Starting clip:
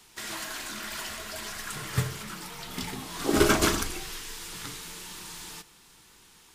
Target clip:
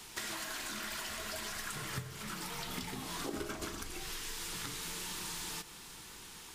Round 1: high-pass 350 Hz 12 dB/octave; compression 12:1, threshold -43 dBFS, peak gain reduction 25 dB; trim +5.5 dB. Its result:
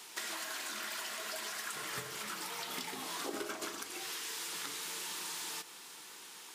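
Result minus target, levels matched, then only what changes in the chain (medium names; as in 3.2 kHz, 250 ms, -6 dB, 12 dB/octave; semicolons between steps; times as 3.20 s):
250 Hz band -4.5 dB
remove: high-pass 350 Hz 12 dB/octave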